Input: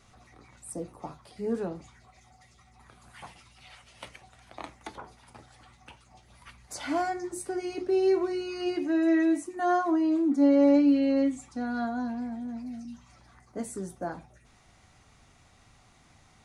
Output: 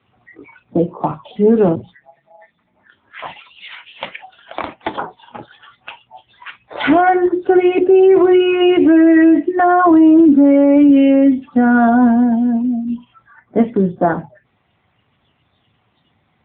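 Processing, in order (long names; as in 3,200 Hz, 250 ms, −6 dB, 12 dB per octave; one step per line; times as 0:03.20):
0:01.75–0:03.24: ring modulation 55 Hz → 190 Hz
0:10.19–0:11.16: high-shelf EQ 2,100 Hz +5.5 dB
noise reduction from a noise print of the clip's start 21 dB
boost into a limiter +24.5 dB
level −2.5 dB
AMR narrowband 7.95 kbit/s 8,000 Hz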